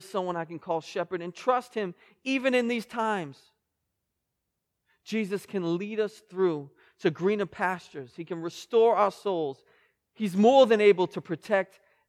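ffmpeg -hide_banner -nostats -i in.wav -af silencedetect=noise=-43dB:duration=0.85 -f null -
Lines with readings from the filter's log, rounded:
silence_start: 3.32
silence_end: 5.07 | silence_duration: 1.75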